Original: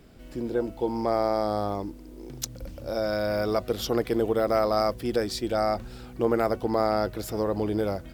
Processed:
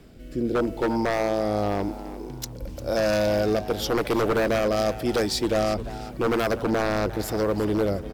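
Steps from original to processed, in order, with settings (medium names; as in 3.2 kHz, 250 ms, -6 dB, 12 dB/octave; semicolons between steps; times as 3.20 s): rotary cabinet horn 0.9 Hz; wavefolder -23 dBFS; frequency-shifting echo 350 ms, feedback 32%, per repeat +110 Hz, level -15 dB; trim +6.5 dB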